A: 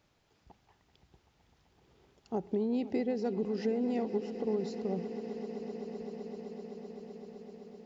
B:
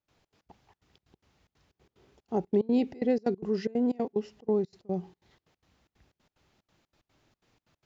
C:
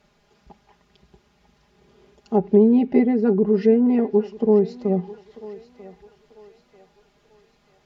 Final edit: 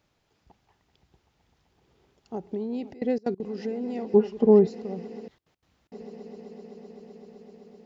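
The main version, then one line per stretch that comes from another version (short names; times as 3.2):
A
2.91–3.4 from B
4.14–4.67 from C
5.28–5.92 from B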